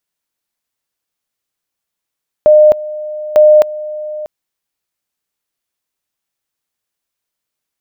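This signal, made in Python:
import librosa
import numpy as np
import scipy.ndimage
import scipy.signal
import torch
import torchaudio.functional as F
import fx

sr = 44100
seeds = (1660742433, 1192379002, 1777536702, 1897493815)

y = fx.two_level_tone(sr, hz=608.0, level_db=-2.5, drop_db=17.5, high_s=0.26, low_s=0.64, rounds=2)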